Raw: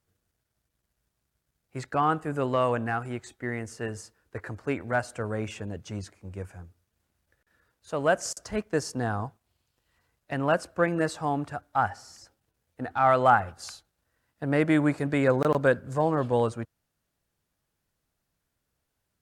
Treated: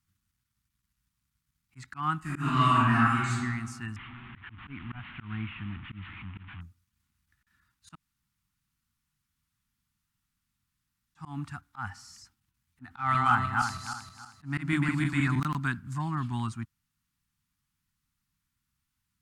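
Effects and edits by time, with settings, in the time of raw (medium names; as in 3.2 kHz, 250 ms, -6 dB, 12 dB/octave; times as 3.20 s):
2.20–3.34 s: reverb throw, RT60 1.6 s, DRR -10.5 dB
3.96–6.61 s: one-bit delta coder 16 kbps, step -35.5 dBFS
7.95–11.15 s: room tone
12.83–15.40 s: backward echo that repeats 158 ms, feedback 54%, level -2 dB
whole clip: Chebyshev band-stop 220–1200 Hz, order 2; peaking EQ 1.6 kHz -4.5 dB 0.28 oct; slow attack 138 ms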